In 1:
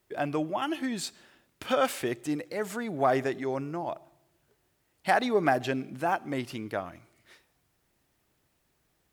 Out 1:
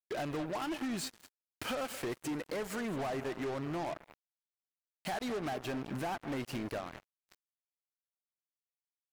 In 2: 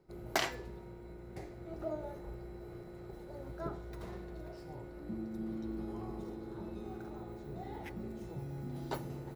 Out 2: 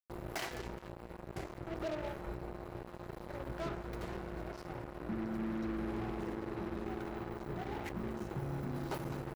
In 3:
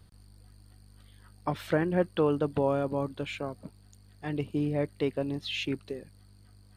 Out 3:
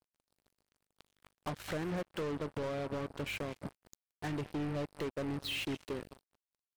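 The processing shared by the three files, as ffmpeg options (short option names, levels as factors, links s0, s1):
-filter_complex "[0:a]bandreject=f=3500:w=13,acompressor=threshold=0.0178:ratio=6,asplit=2[s0][s1];[s1]aecho=0:1:211|422|633:0.158|0.0412|0.0107[s2];[s0][s2]amix=inputs=2:normalize=0,acontrast=77,asoftclip=type=tanh:threshold=0.0335,acrusher=bits=5:mix=0:aa=0.5,alimiter=level_in=4.47:limit=0.0631:level=0:latency=1:release=210,volume=0.224,adynamicequalizer=threshold=0.001:dfrequency=3100:dqfactor=0.7:tfrequency=3100:tqfactor=0.7:attack=5:release=100:ratio=0.375:range=1.5:mode=cutabove:tftype=highshelf,volume=1.58"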